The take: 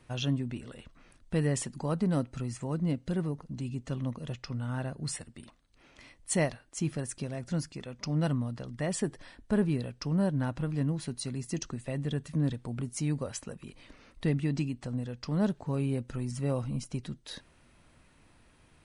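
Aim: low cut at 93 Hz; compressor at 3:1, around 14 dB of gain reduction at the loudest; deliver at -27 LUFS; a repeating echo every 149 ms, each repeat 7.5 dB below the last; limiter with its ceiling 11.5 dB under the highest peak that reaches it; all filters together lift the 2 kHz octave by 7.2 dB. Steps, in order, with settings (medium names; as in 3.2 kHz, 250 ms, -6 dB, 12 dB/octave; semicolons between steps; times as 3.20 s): high-pass 93 Hz; peaking EQ 2 kHz +8.5 dB; compression 3:1, threshold -42 dBFS; peak limiter -34.5 dBFS; feedback delay 149 ms, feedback 42%, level -7.5 dB; trim +17.5 dB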